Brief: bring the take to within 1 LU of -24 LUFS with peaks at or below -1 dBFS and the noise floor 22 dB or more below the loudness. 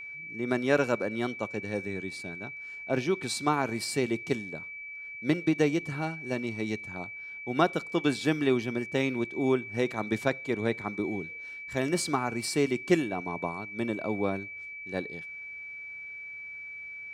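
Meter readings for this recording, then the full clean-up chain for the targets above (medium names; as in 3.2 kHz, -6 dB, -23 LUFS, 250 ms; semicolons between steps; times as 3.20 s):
steady tone 2.3 kHz; tone level -39 dBFS; loudness -31.0 LUFS; peak level -9.0 dBFS; loudness target -24.0 LUFS
-> band-stop 2.3 kHz, Q 30; trim +7 dB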